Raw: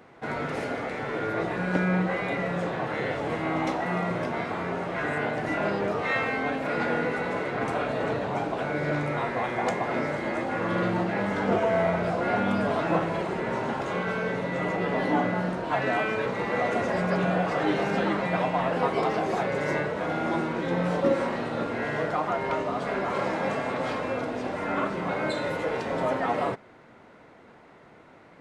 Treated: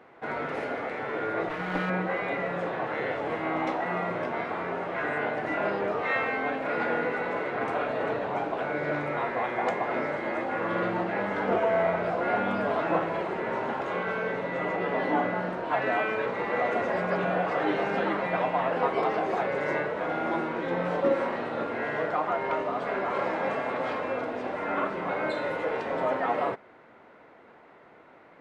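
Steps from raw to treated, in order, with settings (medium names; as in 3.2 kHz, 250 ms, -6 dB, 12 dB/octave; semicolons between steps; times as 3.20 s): 1.49–1.90 s: comb filter that takes the minimum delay 6.4 ms; tone controls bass -9 dB, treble -12 dB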